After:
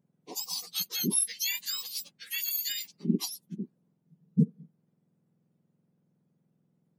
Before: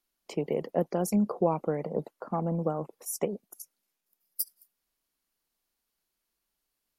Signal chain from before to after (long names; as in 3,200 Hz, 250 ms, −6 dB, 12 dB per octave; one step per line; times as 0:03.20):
frequency axis turned over on the octave scale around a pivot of 1,500 Hz
high-shelf EQ 9,200 Hz +6.5 dB